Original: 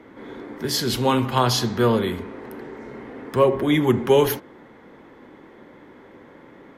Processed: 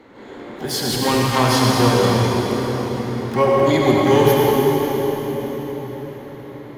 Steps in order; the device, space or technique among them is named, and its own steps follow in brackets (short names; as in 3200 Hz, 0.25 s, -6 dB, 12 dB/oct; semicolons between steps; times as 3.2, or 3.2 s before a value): shimmer-style reverb (harmoniser +12 st -9 dB; reverb RT60 5.2 s, pre-delay 64 ms, DRR -3.5 dB); gain -1 dB